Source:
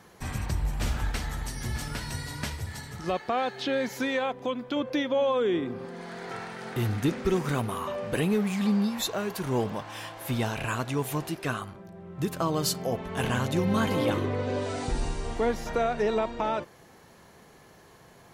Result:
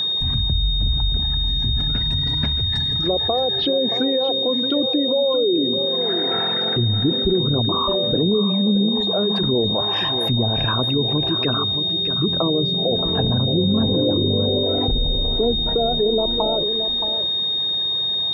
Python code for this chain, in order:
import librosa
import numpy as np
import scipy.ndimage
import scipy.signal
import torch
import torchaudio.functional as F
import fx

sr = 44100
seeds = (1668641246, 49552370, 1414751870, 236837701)

y = fx.envelope_sharpen(x, sr, power=2.0)
y = fx.env_lowpass_down(y, sr, base_hz=600.0, full_db=-24.5)
y = y + 10.0 ** (-11.5 / 20.0) * np.pad(y, (int(623 * sr / 1000.0), 0))[:len(y)]
y = y + 10.0 ** (-31.0 / 20.0) * np.sin(2.0 * np.pi * 3700.0 * np.arange(len(y)) / sr)
y = fx.env_flatten(y, sr, amount_pct=50)
y = y * librosa.db_to_amplitude(5.5)